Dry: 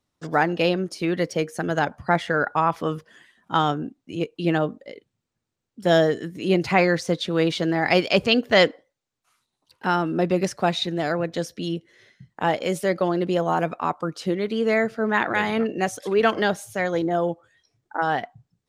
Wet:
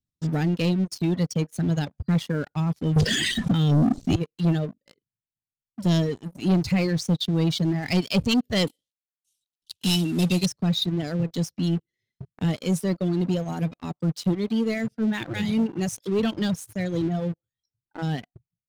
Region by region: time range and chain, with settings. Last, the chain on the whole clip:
2.96–4.16 LPF 8700 Hz 24 dB/oct + fast leveller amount 100%
8.67–10.46 CVSD 64 kbps + resonant high shelf 2200 Hz +11.5 dB, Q 3
whole clip: reverb removal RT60 1.9 s; EQ curve 160 Hz 0 dB, 1100 Hz -29 dB, 3800 Hz -9 dB; sample leveller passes 3

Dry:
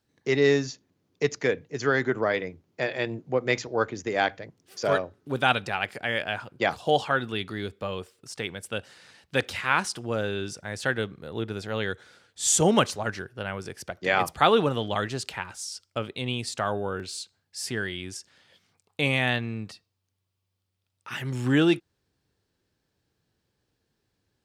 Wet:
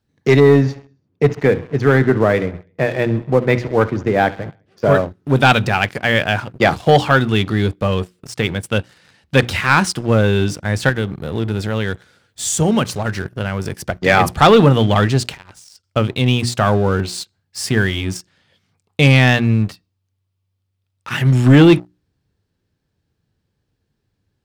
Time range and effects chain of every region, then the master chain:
0.4–5.02 tape spacing loss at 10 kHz 27 dB + feedback echo 67 ms, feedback 60%, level -18.5 dB
10.89–13.86 high shelf 12000 Hz +10.5 dB + compressor 2:1, threshold -34 dBFS
15.34–15.84 expander -47 dBFS + compressor 10:1, threshold -42 dBFS + core saturation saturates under 1300 Hz
whole clip: tone controls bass +9 dB, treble -3 dB; notches 60/120/180/240/300/360 Hz; sample leveller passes 2; gain +4.5 dB

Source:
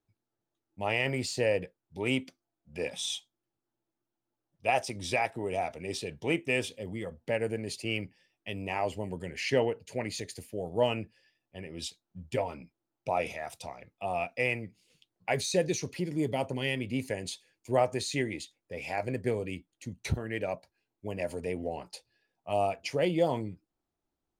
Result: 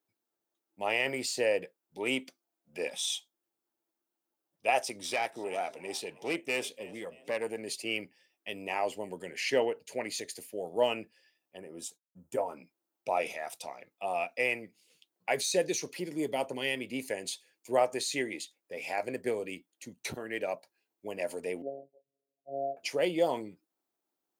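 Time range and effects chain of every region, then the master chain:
5.01–7.59 frequency-shifting echo 0.314 s, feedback 37%, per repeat +73 Hz, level -21 dB + tube stage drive 22 dB, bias 0.4
11.57–12.57 expander -57 dBFS + band shelf 3100 Hz -13 dB
21.62–22.77 steep low-pass 680 Hz 96 dB/oct + robotiser 138 Hz
whole clip: HPF 300 Hz 12 dB/oct; high shelf 11000 Hz +10 dB

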